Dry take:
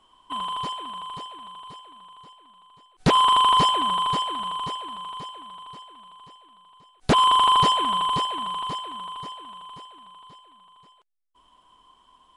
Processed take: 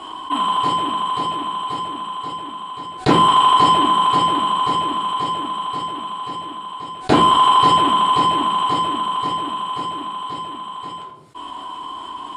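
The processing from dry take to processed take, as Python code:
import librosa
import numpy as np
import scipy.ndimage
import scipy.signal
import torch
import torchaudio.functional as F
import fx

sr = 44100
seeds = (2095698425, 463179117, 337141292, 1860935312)

y = fx.cabinet(x, sr, low_hz=100.0, low_slope=12, high_hz=9000.0, hz=(190.0, 320.0, 850.0, 6000.0), db=(-5, 6, 5, -9))
y = fx.room_shoebox(y, sr, seeds[0], volume_m3=340.0, walls='furnished', distance_m=3.3)
y = fx.env_flatten(y, sr, amount_pct=50)
y = y * librosa.db_to_amplitude(-2.0)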